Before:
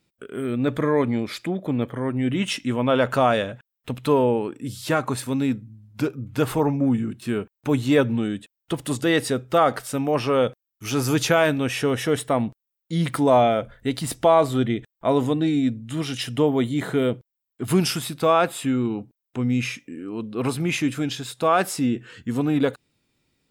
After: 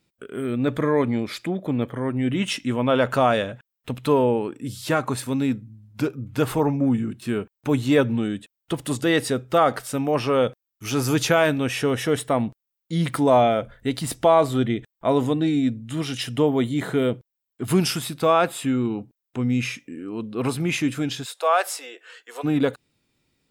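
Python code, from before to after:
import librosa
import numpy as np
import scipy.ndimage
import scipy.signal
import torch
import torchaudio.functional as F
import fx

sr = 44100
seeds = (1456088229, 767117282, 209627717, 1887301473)

y = fx.steep_highpass(x, sr, hz=480.0, slope=36, at=(21.24, 22.43), fade=0.02)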